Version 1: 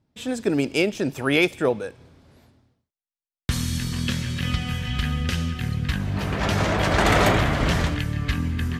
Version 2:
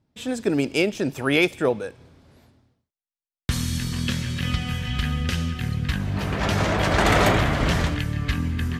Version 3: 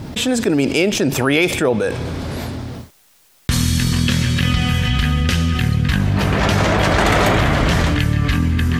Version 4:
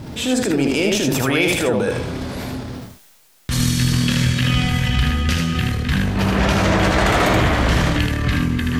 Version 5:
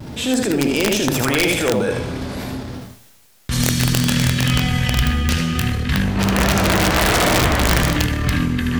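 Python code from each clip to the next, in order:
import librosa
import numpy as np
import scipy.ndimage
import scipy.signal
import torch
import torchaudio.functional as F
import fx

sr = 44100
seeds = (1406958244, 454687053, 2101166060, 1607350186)

y1 = x
y2 = fx.env_flatten(y1, sr, amount_pct=70)
y2 = y2 * librosa.db_to_amplitude(2.5)
y3 = fx.transient(y2, sr, attack_db=-4, sustain_db=5)
y3 = fx.comb_fb(y3, sr, f0_hz=64.0, decay_s=0.16, harmonics='all', damping=0.0, mix_pct=60)
y3 = y3 + 10.0 ** (-3.5 / 20.0) * np.pad(y3, (int(78 * sr / 1000.0), 0))[:len(y3)]
y4 = fx.vibrato(y3, sr, rate_hz=0.52, depth_cents=19.0)
y4 = (np.mod(10.0 ** (8.0 / 20.0) * y4 + 1.0, 2.0) - 1.0) / 10.0 ** (8.0 / 20.0)
y4 = fx.rev_double_slope(y4, sr, seeds[0], early_s=0.9, late_s=2.5, knee_db=-23, drr_db=14.0)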